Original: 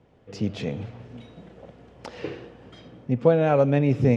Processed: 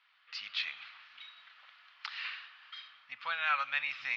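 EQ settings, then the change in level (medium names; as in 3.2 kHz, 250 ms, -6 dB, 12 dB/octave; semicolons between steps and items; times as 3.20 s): elliptic band-pass 1.2–4.4 kHz, stop band 50 dB; treble shelf 2.3 kHz +8 dB; +1.5 dB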